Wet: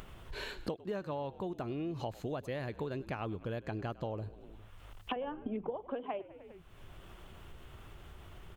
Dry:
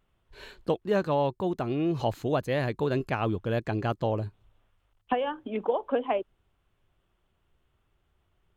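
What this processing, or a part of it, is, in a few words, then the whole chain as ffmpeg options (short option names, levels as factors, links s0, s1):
upward and downward compression: -filter_complex "[0:a]asettb=1/sr,asplit=3[s0][s1][s2];[s0]atrim=end=5.164[s3];[s1]atrim=start=5.16:end=5.77,asetpts=PTS-STARTPTS,afade=t=in:d=0.004:c=qsin,afade=t=out:st=0.606:d=0.004:c=qsin,aemphasis=mode=reproduction:type=riaa[s4];[s2]atrim=start=5.766[s5];[s3][s4]acrossfade=d=0.004:c1=hsin:c2=qsin[s6];[s6][s5]acrossfade=d=0.004:c1=qsin:c2=hsin,asplit=5[s7][s8][s9][s10][s11];[s8]adelay=100,afreqshift=-53,volume=0.0891[s12];[s9]adelay=200,afreqshift=-106,volume=0.0507[s13];[s10]adelay=300,afreqshift=-159,volume=0.0288[s14];[s11]adelay=400,afreqshift=-212,volume=0.0166[s15];[s7][s12][s13][s14][s15]amix=inputs=5:normalize=0,acompressor=mode=upward:threshold=0.0126:ratio=2.5,acompressor=threshold=0.0112:ratio=6,volume=1.41"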